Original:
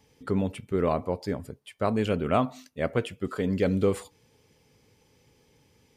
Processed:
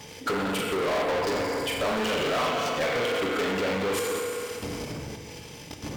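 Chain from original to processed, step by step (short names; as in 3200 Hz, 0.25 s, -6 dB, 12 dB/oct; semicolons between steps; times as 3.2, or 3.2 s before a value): reverse delay 0.153 s, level -13.5 dB; wind noise 84 Hz -40 dBFS; HPF 50 Hz 12 dB/oct; tone controls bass +3 dB, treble +4 dB; flutter echo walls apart 7.1 m, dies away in 0.52 s; level quantiser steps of 14 dB; transient shaper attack +6 dB, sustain -6 dB; compressor, threshold -29 dBFS, peak gain reduction 9 dB; FDN reverb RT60 2.3 s, low-frequency decay 0.95×, high-frequency decay 0.95×, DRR 4 dB; overdrive pedal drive 36 dB, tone 7700 Hz, clips at -15.5 dBFS; low shelf 200 Hz -9 dB; decimation joined by straight lines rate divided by 2×; gain -2.5 dB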